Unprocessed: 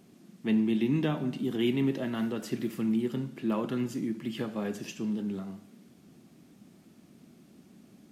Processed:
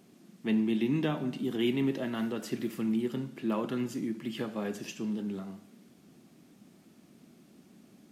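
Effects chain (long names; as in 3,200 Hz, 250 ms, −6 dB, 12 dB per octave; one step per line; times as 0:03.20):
low-shelf EQ 140 Hz −6.5 dB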